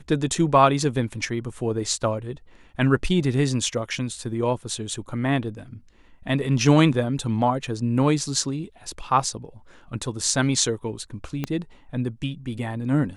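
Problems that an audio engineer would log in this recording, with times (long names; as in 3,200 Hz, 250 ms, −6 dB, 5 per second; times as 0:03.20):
0:11.44: click −13 dBFS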